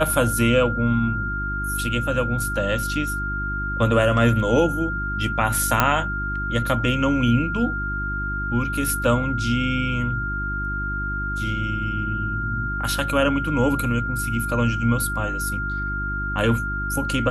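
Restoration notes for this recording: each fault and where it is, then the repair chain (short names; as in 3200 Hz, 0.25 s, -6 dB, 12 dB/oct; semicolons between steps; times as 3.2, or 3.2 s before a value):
hum 50 Hz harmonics 7 -29 dBFS
tone 1400 Hz -26 dBFS
5.8 pop -2 dBFS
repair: de-click; de-hum 50 Hz, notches 7; notch 1400 Hz, Q 30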